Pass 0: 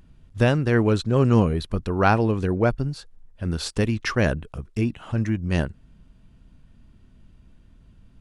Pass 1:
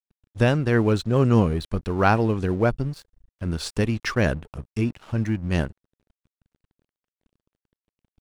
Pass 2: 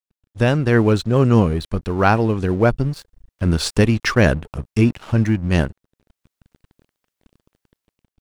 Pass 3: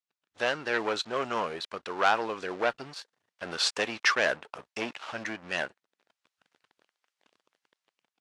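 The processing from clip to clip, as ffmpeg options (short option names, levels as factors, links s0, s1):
-af "aeval=exprs='sgn(val(0))*max(abs(val(0))-0.00631,0)':c=same"
-af "dynaudnorm=f=130:g=7:m=5.62,volume=0.841"
-af "asoftclip=type=tanh:threshold=0.211,highpass=750,lowpass=5900" -ar 32000 -c:a libvorbis -b:a 64k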